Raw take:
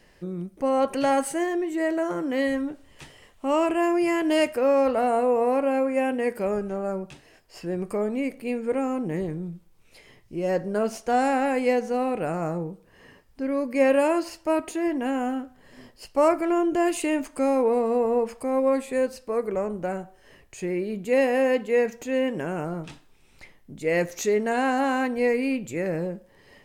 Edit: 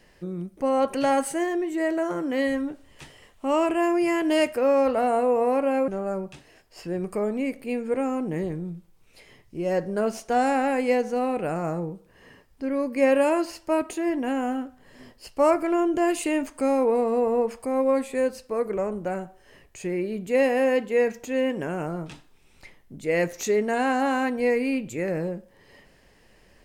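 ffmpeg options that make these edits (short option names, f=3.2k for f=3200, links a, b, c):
-filter_complex "[0:a]asplit=2[a][b];[a]atrim=end=5.882[c];[b]atrim=start=6.658[d];[c][d]acrossfade=d=0.004:c1=hsin:c2=hsin"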